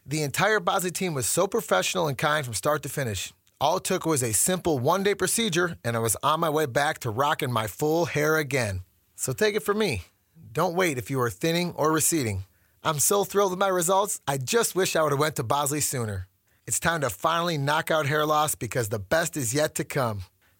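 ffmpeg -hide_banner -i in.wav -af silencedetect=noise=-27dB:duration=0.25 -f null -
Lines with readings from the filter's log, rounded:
silence_start: 3.26
silence_end: 3.61 | silence_duration: 0.35
silence_start: 8.77
silence_end: 9.21 | silence_duration: 0.44
silence_start: 9.98
silence_end: 10.55 | silence_duration: 0.57
silence_start: 12.39
silence_end: 12.85 | silence_duration: 0.45
silence_start: 16.19
silence_end: 16.68 | silence_duration: 0.50
silence_start: 20.13
silence_end: 20.60 | silence_duration: 0.47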